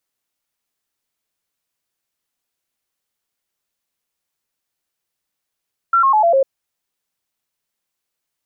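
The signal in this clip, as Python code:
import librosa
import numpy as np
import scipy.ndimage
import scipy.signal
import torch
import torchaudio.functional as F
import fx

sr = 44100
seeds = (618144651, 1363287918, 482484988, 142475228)

y = fx.stepped_sweep(sr, from_hz=1360.0, direction='down', per_octave=3, tones=5, dwell_s=0.1, gap_s=0.0, level_db=-10.0)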